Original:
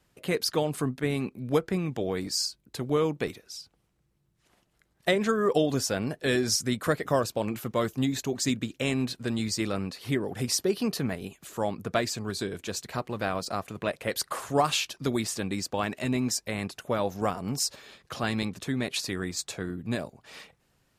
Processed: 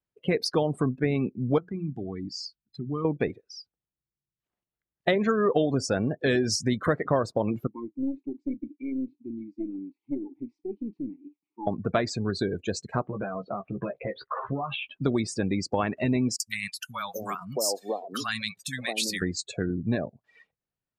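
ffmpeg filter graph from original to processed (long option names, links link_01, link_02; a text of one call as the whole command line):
ffmpeg -i in.wav -filter_complex "[0:a]asettb=1/sr,asplit=3[link_01][link_02][link_03];[link_01]atrim=end=1.584[link_04];[link_02]atrim=start=1.58:end=3.05,asetpts=PTS-STARTPTS,afade=type=in:duration=0.004:curve=qsin,afade=type=out:start_time=1.466:duration=0.004:curve=qsin,equalizer=frequency=520:width_type=o:width=0.57:gain=-14.5,bandreject=frequency=60:width_type=h:width=6,bandreject=frequency=120:width_type=h:width=6,bandreject=frequency=180:width_type=h:width=6,acompressor=threshold=-47dB:ratio=1.5:attack=3.2:release=140:knee=1:detection=peak[link_05];[link_03]atrim=start=3.046[link_06];[link_04][link_05]acrossfade=duration=0.004:curve1=hsin:curve2=qsin[link_07];[link_07][link_06]acrossfade=duration=0.004:curve1=qsin:curve2=hsin,asettb=1/sr,asplit=3[link_08][link_09][link_10];[link_08]atrim=end=7.674[link_11];[link_09]atrim=start=7.67:end=11.67,asetpts=PTS-STARTPTS,afade=type=in:duration=0.004:curve=qsin,afade=type=out:start_time=3.996:duration=0.004:curve=qsin,asplit=3[link_12][link_13][link_14];[link_12]bandpass=frequency=300:width_type=q:width=8,volume=0dB[link_15];[link_13]bandpass=frequency=870:width_type=q:width=8,volume=-6dB[link_16];[link_14]bandpass=frequency=2240:width_type=q:width=8,volume=-9dB[link_17];[link_15][link_16][link_17]amix=inputs=3:normalize=0,aeval=exprs='(tanh(28.2*val(0)+0.45)-tanh(0.45))/28.2':channel_layout=same,asplit=2[link_18][link_19];[link_19]adelay=34,volume=-13dB[link_20];[link_18][link_20]amix=inputs=2:normalize=0,atrim=end_sample=176400[link_21];[link_10]atrim=start=11.666[link_22];[link_11][link_21]acrossfade=duration=0.004:curve1=hsin:curve2=qsin[link_23];[link_23][link_22]acrossfade=duration=0.004:curve1=qsin:curve2=hsin,asettb=1/sr,asplit=3[link_24][link_25][link_26];[link_24]atrim=end=13.034[link_27];[link_25]atrim=start=13.03:end=15.01,asetpts=PTS-STARTPTS,afade=type=in:duration=0.004:curve=qsin,afade=type=out:start_time=1.976:duration=0.004:curve=qsin,lowpass=frequency=3200:width=0.5412,lowpass=frequency=3200:width=1.3066,acompressor=threshold=-33dB:ratio=16:attack=3.2:release=140:knee=1:detection=peak,asplit=2[link_28][link_29];[link_29]adelay=15,volume=-4.5dB[link_30];[link_28][link_30]amix=inputs=2:normalize=0,atrim=end_sample=87318[link_31];[link_26]atrim=start=15.006[link_32];[link_27][link_31]acrossfade=duration=0.004:curve1=hsin:curve2=qsin[link_33];[link_33][link_32]acrossfade=duration=0.004:curve1=qsin:curve2=hsin,asettb=1/sr,asplit=3[link_34][link_35][link_36];[link_34]atrim=end=16.364[link_37];[link_35]atrim=start=16.36:end=19.22,asetpts=PTS-STARTPTS,afade=type=in:duration=0.004:curve=qsin,afade=type=out:start_time=2.856:duration=0.004:curve=qsin,aemphasis=mode=production:type=riaa,acompressor=threshold=-28dB:ratio=2:attack=3.2:release=140:knee=1:detection=peak,acrossover=split=210|870[link_38][link_39][link_40];[link_40]adelay=40[link_41];[link_39]adelay=670[link_42];[link_38][link_42][link_41]amix=inputs=3:normalize=0,atrim=end_sample=126126[link_43];[link_36]atrim=start=19.216[link_44];[link_37][link_43]acrossfade=duration=0.004:curve1=hsin:curve2=qsin[link_45];[link_45][link_44]acrossfade=duration=0.004:curve1=qsin:curve2=hsin,afftdn=noise_reduction=31:noise_floor=-36,lowpass=frequency=3200:poles=1,acompressor=threshold=-32dB:ratio=2,volume=7.5dB" out.wav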